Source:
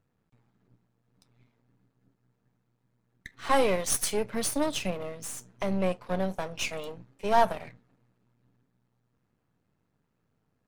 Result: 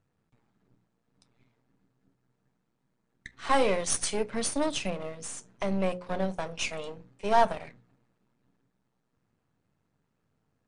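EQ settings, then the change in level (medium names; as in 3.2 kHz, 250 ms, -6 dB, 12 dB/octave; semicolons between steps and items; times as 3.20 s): brick-wall FIR low-pass 10 kHz; hum notches 60/120/180/240/300/360/420/480/540 Hz; 0.0 dB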